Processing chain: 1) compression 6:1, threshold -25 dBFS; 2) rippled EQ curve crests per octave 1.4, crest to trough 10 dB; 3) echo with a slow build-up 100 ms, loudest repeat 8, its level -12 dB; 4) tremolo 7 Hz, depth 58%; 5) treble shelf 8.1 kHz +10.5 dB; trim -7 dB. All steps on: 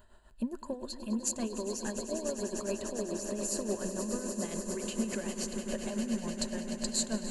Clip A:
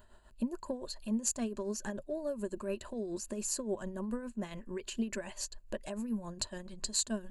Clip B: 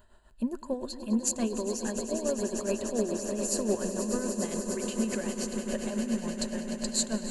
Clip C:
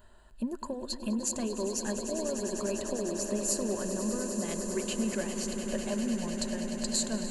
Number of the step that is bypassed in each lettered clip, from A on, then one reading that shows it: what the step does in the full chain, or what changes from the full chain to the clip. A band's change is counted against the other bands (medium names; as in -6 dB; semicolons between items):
3, momentary loudness spread change +4 LU; 1, mean gain reduction 2.5 dB; 4, loudness change +2.5 LU